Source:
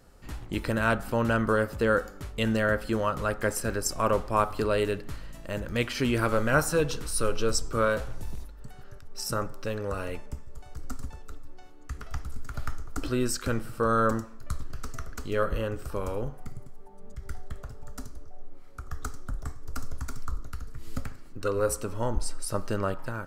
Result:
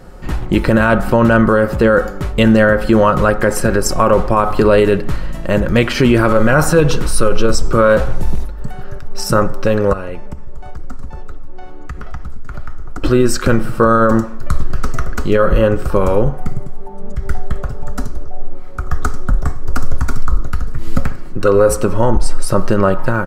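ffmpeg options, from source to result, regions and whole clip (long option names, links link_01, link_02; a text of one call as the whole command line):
ffmpeg -i in.wav -filter_complex "[0:a]asettb=1/sr,asplit=3[link_01][link_02][link_03];[link_01]atrim=end=9.934[link_04];[link_02]atrim=start=9.93:end=13.04,asetpts=PTS-STARTPTS,afade=type=in:duration=0.004:curve=qsin,afade=type=out:start_time=3.106:duration=0.004:curve=qsin,highshelf=frequency=5100:gain=-6,acompressor=threshold=-42dB:ratio=3:attack=3.2:release=140:knee=1:detection=peak[link_05];[link_03]atrim=start=13.036[link_06];[link_04][link_05]acrossfade=duration=0.004:curve1=hsin:curve2=qsin[link_07];[link_07][link_06]acrossfade=duration=0.004:curve1=qsin:curve2=hsin,highshelf=frequency=2800:gain=-10.5,aecho=1:1:5.5:0.31,alimiter=level_in=20dB:limit=-1dB:release=50:level=0:latency=1,volume=-1dB" out.wav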